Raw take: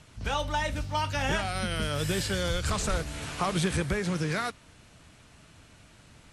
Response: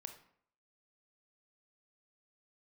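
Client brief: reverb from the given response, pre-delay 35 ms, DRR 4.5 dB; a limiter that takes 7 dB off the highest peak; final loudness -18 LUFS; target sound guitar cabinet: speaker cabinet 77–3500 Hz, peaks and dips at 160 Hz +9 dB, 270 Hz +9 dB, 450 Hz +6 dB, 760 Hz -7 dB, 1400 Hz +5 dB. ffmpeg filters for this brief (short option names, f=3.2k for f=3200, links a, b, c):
-filter_complex "[0:a]alimiter=limit=-23.5dB:level=0:latency=1,asplit=2[a][b];[1:a]atrim=start_sample=2205,adelay=35[c];[b][c]afir=irnorm=-1:irlink=0,volume=0dB[d];[a][d]amix=inputs=2:normalize=0,highpass=77,equalizer=f=160:t=q:w=4:g=9,equalizer=f=270:t=q:w=4:g=9,equalizer=f=450:t=q:w=4:g=6,equalizer=f=760:t=q:w=4:g=-7,equalizer=f=1.4k:t=q:w=4:g=5,lowpass=f=3.5k:w=0.5412,lowpass=f=3.5k:w=1.3066,volume=12dB"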